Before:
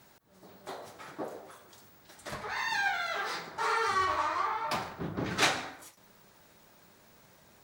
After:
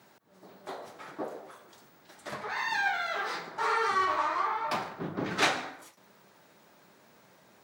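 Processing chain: high-pass 160 Hz 12 dB/octave; treble shelf 4.4 kHz -7 dB; trim +2 dB

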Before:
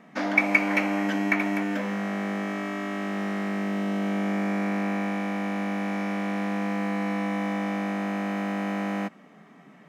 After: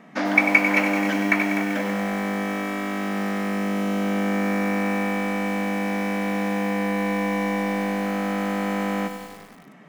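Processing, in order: 5.44–8.06 s: band-stop 1.3 kHz, Q 8.2; bit-crushed delay 96 ms, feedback 80%, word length 7-bit, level -9 dB; trim +3.5 dB

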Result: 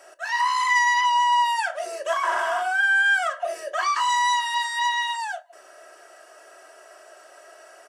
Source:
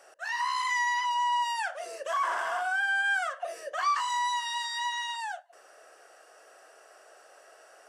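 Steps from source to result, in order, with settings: comb 3.1 ms, depth 54%; on a send: reverberation, pre-delay 4 ms, DRR 13 dB; on the sum: trim +5 dB

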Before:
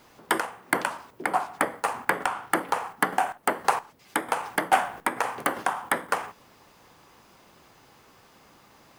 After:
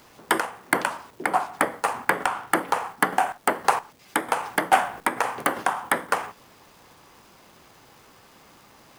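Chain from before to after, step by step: crackle 590 per s -49 dBFS; trim +2.5 dB

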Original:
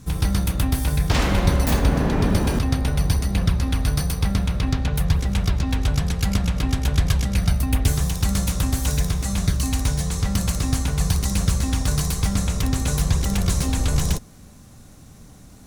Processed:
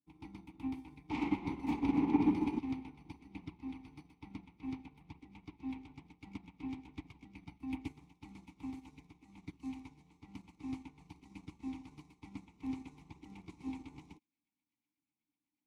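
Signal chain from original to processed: vowel filter u; feedback echo behind a high-pass 741 ms, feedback 76%, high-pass 1.6 kHz, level -13 dB; upward expansion 2.5:1, over -55 dBFS; trim +5 dB

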